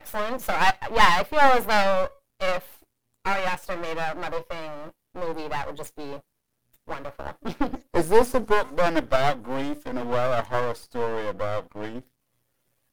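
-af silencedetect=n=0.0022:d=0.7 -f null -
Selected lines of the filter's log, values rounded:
silence_start: 12.08
silence_end: 12.93 | silence_duration: 0.85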